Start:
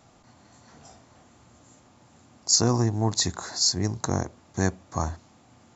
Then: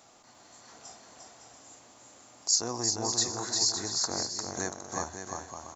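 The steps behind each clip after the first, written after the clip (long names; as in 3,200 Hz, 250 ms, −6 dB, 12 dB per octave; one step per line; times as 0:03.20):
bass and treble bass −14 dB, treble +6 dB
downward compressor 1.5 to 1, threshold −40 dBFS, peak gain reduction 10.5 dB
on a send: bouncing-ball delay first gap 350 ms, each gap 0.6×, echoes 5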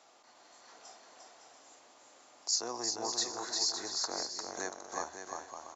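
three-way crossover with the lows and the highs turned down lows −18 dB, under 300 Hz, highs −22 dB, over 7,000 Hz
level −2.5 dB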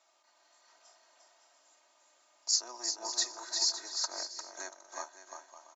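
Bessel high-pass filter 670 Hz, order 2
comb filter 3.2 ms, depth 70%
expander for the loud parts 1.5 to 1, over −47 dBFS
level +2 dB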